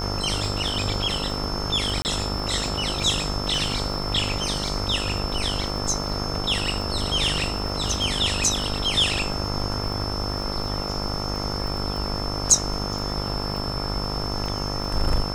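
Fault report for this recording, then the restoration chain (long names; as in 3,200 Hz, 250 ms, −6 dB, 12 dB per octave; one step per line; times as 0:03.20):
mains buzz 50 Hz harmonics 28 −30 dBFS
surface crackle 37 per second −31 dBFS
whistle 5,300 Hz −31 dBFS
0:02.02–0:02.05: drop-out 29 ms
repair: click removal
notch filter 5,300 Hz, Q 30
hum removal 50 Hz, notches 28
repair the gap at 0:02.02, 29 ms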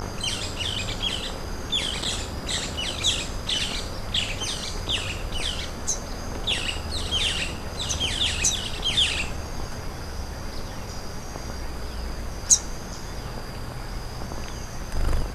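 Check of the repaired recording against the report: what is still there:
none of them is left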